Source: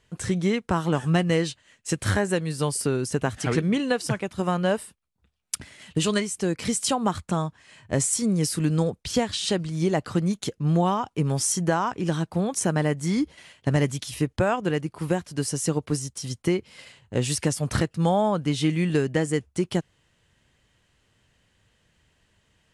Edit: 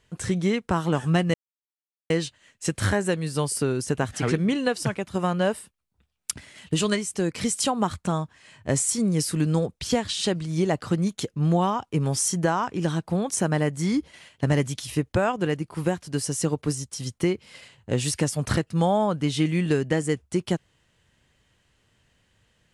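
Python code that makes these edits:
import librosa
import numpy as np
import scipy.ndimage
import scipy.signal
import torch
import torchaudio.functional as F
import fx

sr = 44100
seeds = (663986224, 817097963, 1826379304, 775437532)

y = fx.edit(x, sr, fx.insert_silence(at_s=1.34, length_s=0.76), tone=tone)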